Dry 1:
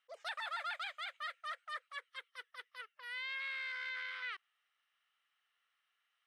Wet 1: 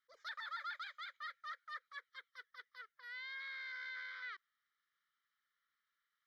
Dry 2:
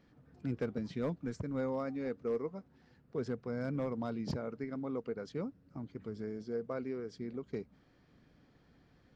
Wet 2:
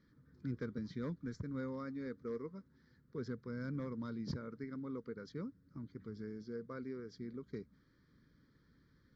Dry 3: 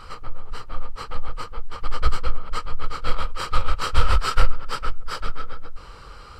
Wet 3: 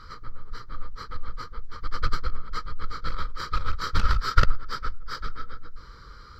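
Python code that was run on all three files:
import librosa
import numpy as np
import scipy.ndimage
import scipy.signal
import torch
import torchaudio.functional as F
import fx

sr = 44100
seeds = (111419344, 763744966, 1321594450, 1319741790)

y = fx.fixed_phaser(x, sr, hz=2700.0, stages=6)
y = fx.cheby_harmonics(y, sr, harmonics=(4, 6, 8), levels_db=(-7, -13, -33), full_scale_db=-1.0)
y = F.gain(torch.from_numpy(y), -2.5).numpy()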